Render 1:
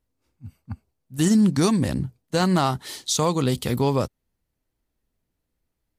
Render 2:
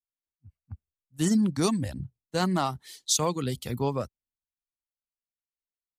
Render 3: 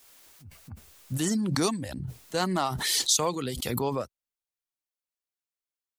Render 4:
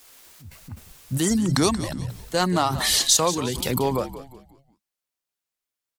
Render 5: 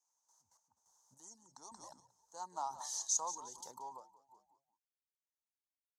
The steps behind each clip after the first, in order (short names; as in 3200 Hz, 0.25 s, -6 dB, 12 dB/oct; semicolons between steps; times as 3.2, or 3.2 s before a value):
reverb removal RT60 0.73 s; three-band expander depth 70%; gain -5.5 dB
tone controls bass -8 dB, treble +1 dB; backwards sustainer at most 26 dB/s
wow and flutter 69 cents; frequency-shifting echo 0.18 s, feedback 39%, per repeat -70 Hz, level -13 dB; gain +5.5 dB
random-step tremolo 3.5 Hz, depth 80%; double band-pass 2400 Hz, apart 2.8 oct; gain -7.5 dB